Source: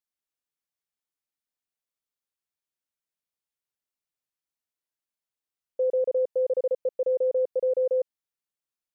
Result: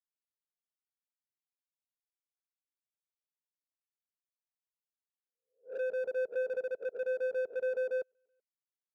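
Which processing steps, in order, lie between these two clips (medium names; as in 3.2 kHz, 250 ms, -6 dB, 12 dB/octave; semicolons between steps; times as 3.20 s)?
reverse spectral sustain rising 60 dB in 0.46 s; reverb removal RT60 0.82 s; in parallel at -4.5 dB: hard clipper -29.5 dBFS, distortion -10 dB; on the sum: comb of notches 590 Hz; saturation -29.5 dBFS, distortion -11 dB; delay 380 ms -20 dB; upward expansion 2.5:1, over -47 dBFS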